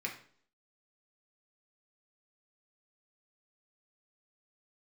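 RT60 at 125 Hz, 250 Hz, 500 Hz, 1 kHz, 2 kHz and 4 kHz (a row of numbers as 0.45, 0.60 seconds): 0.55, 0.60, 0.55, 0.50, 0.45, 0.50 seconds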